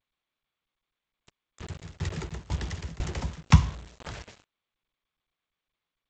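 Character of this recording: a quantiser's noise floor 6-bit, dither none; tremolo saw down 2 Hz, depth 95%; G.722

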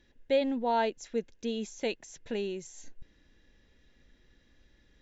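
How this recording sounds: noise floor -65 dBFS; spectral tilt -3.0 dB/oct

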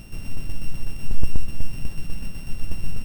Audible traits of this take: a buzz of ramps at a fixed pitch in blocks of 16 samples; tremolo saw down 8.1 Hz, depth 45%

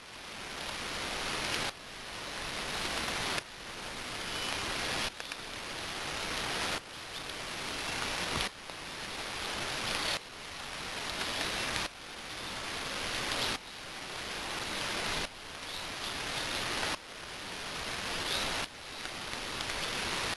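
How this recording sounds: a quantiser's noise floor 6-bit, dither triangular; tremolo saw up 0.59 Hz, depth 85%; aliases and images of a low sample rate 8000 Hz, jitter 20%; AAC

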